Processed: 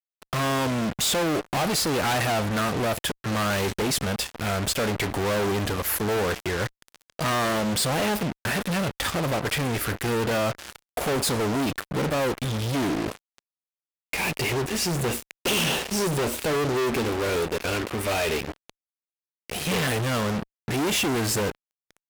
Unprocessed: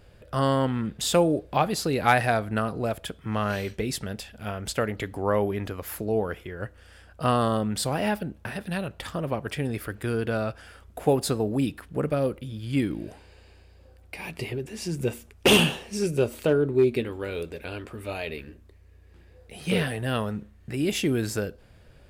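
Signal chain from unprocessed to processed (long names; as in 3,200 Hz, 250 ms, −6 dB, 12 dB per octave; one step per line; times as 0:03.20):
fuzz pedal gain 46 dB, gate −42 dBFS
low-shelf EQ 190 Hz −5 dB
level −8.5 dB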